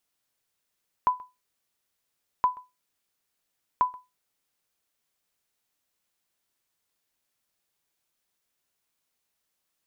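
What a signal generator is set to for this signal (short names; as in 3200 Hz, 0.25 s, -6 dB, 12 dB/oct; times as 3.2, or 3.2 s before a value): sonar ping 1000 Hz, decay 0.22 s, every 1.37 s, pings 3, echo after 0.13 s, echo -23.5 dB -13.5 dBFS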